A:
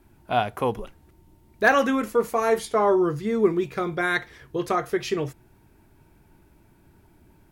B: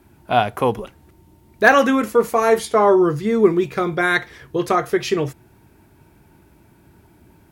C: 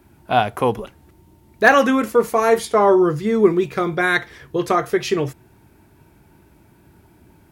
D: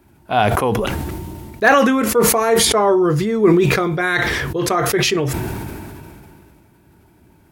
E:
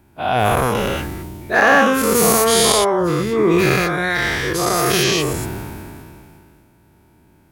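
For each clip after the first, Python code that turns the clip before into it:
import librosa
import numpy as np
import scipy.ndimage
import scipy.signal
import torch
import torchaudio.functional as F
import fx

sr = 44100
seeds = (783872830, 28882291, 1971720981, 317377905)

y1 = scipy.signal.sosfilt(scipy.signal.butter(2, 58.0, 'highpass', fs=sr, output='sos'), x)
y1 = F.gain(torch.from_numpy(y1), 6.0).numpy()
y2 = fx.wow_flutter(y1, sr, seeds[0], rate_hz=2.1, depth_cents=28.0)
y3 = fx.sustainer(y2, sr, db_per_s=23.0)
y3 = F.gain(torch.from_numpy(y3), -1.0).numpy()
y4 = fx.spec_dilate(y3, sr, span_ms=240)
y4 = F.gain(torch.from_numpy(y4), -7.0).numpy()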